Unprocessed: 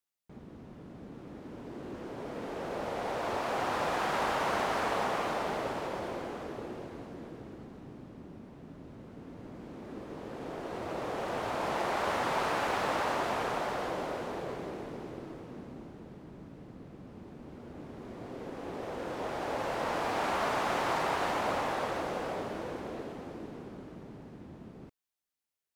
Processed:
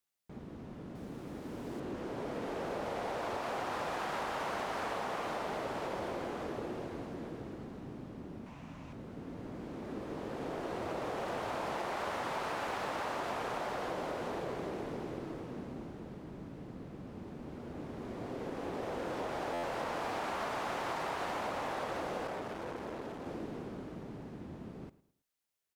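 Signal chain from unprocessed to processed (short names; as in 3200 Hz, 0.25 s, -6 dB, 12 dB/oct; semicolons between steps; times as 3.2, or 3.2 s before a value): 8.46–8.93 fifteen-band EQ 400 Hz -10 dB, 1000 Hz +6 dB, 2500 Hz +9 dB, 6300 Hz +6 dB; feedback echo 0.109 s, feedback 36%, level -19 dB; compressor 6:1, threshold -36 dBFS, peak gain reduction 9 dB; 0.95–1.8 high shelf 6300 Hz +10.5 dB; stuck buffer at 19.53, times 8; 22.27–23.26 core saturation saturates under 870 Hz; gain +2 dB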